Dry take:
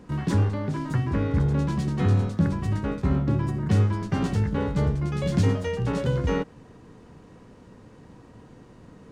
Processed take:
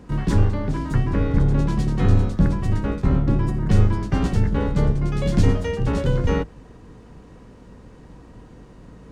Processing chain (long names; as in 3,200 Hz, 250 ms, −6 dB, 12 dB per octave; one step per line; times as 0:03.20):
sub-octave generator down 2 octaves, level 0 dB
level +2.5 dB